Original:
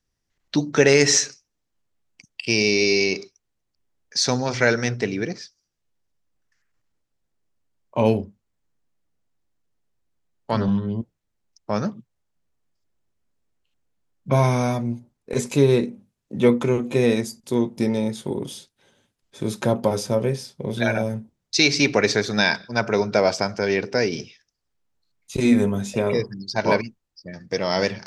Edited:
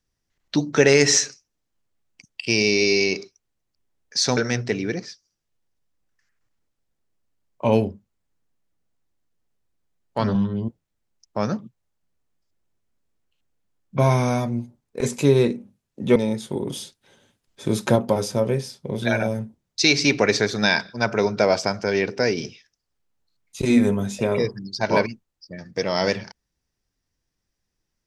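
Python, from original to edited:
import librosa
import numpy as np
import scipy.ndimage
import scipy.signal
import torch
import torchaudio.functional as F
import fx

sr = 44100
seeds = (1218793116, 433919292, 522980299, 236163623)

y = fx.edit(x, sr, fx.cut(start_s=4.37, length_s=0.33),
    fx.cut(start_s=16.49, length_s=1.42),
    fx.clip_gain(start_s=18.43, length_s=1.28, db=3.5), tone=tone)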